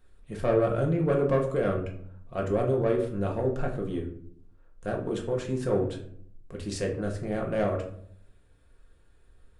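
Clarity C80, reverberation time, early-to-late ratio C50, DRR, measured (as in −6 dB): 12.5 dB, 0.65 s, 8.5 dB, 0.0 dB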